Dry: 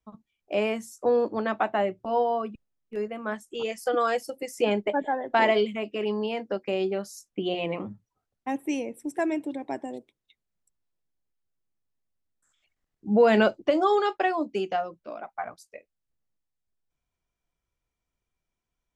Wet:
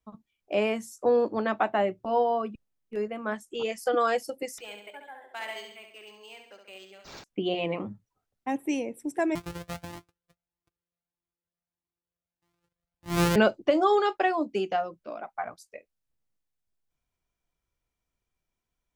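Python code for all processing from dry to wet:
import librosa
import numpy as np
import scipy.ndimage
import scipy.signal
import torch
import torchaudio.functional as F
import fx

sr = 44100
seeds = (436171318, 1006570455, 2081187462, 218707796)

y = fx.chain(x, sr, fx.differentiator(),
    fx.echo_feedback(ms=68, feedback_pct=47, wet_db=-6.0),
    fx.resample_linear(factor=4), at=(4.58, 7.24))
y = fx.chain(y, sr, fx.sample_sort(block=256),
    fx.highpass(hz=44.0, slope=12),
    fx.comb_cascade(direction='rising', hz=1.6), at=(9.35, 13.36))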